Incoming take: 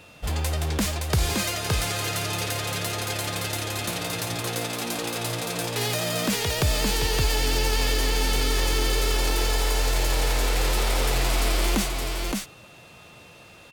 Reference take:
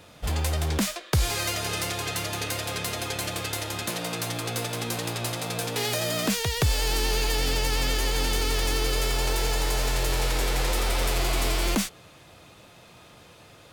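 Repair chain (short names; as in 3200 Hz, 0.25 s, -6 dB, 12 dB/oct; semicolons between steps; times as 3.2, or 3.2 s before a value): notch 2700 Hz, Q 30; inverse comb 0.568 s -3.5 dB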